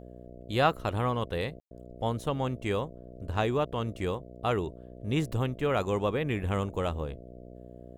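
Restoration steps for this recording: de-hum 61.2 Hz, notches 11; room tone fill 1.60–1.71 s

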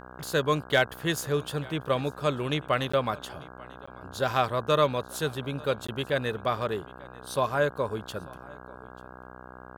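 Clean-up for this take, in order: clip repair -11 dBFS; de-hum 62.8 Hz, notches 26; interpolate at 2.92/3.86/5.87 s, 15 ms; inverse comb 891 ms -23 dB

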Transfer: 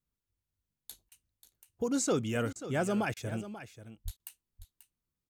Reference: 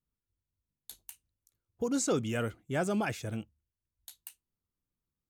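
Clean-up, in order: 4.04–4.16 s: high-pass 140 Hz 24 dB/octave; interpolate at 1.09/2.53/3.14/4.17 s, 25 ms; inverse comb 537 ms -13 dB

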